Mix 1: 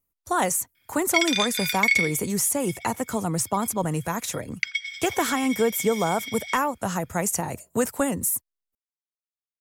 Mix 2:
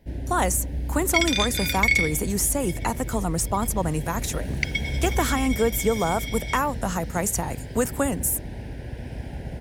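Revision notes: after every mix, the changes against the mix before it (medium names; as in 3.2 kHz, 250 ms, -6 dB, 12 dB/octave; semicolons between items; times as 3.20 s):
first sound: unmuted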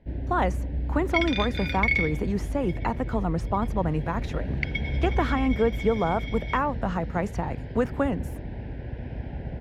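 master: add distance through air 320 m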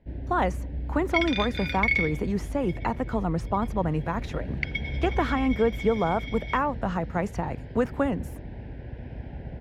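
first sound -3.5 dB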